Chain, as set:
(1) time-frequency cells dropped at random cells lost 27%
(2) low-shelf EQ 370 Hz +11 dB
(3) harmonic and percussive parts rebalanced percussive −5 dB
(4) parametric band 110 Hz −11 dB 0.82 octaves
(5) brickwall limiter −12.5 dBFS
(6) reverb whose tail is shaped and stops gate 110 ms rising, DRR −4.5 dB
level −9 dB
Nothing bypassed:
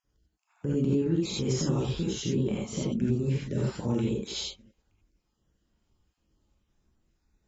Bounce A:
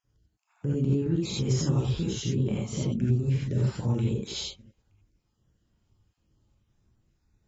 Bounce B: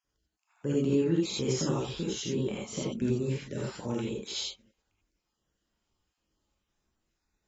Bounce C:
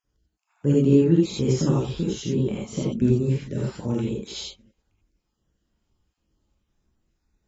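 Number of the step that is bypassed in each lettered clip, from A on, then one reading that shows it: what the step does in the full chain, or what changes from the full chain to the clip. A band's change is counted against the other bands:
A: 4, 125 Hz band +5.0 dB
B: 2, 125 Hz band −5.5 dB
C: 5, average gain reduction 2.5 dB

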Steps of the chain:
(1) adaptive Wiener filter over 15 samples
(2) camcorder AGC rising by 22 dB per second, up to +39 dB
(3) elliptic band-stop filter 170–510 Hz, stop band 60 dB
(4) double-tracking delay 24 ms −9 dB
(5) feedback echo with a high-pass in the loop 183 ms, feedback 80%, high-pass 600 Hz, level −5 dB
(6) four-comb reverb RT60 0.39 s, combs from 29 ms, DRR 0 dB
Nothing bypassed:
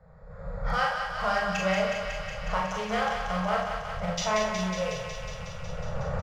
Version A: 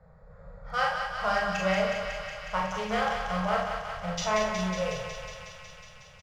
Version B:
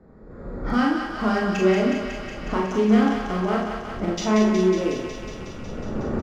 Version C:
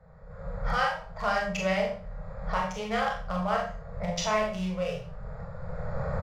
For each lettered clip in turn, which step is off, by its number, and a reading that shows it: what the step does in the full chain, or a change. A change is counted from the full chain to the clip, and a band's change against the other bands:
2, change in momentary loudness spread +5 LU
3, 250 Hz band +14.5 dB
5, echo-to-direct ratio 3.5 dB to 0.0 dB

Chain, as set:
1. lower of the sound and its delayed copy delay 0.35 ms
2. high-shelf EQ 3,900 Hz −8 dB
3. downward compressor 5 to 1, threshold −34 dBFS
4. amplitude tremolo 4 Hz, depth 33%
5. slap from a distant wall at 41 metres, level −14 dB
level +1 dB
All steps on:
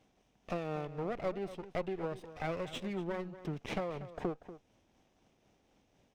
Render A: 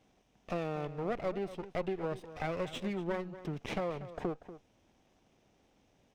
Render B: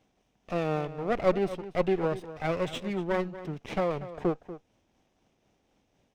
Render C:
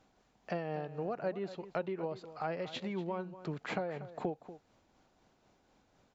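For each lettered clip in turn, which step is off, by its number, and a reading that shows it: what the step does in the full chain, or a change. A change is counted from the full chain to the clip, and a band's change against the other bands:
4, change in integrated loudness +1.5 LU
3, average gain reduction 7.0 dB
1, change in crest factor +2.5 dB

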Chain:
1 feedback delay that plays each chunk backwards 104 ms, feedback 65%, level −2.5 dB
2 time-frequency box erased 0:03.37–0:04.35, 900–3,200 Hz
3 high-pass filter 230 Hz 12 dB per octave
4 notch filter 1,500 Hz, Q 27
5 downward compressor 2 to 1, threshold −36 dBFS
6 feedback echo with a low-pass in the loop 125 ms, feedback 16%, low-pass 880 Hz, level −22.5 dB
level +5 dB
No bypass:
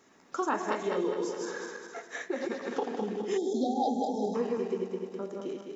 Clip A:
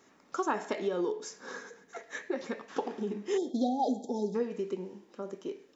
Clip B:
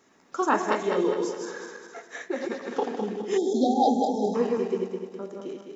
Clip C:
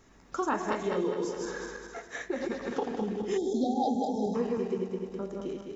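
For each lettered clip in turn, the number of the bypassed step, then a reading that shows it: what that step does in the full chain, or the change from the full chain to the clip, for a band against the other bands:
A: 1, change in momentary loudness spread +3 LU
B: 5, average gain reduction 3.0 dB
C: 3, 250 Hz band +2.0 dB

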